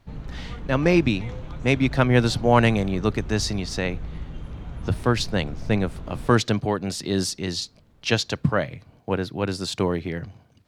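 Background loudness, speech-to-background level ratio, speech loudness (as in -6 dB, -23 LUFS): -37.5 LUFS, 13.5 dB, -24.0 LUFS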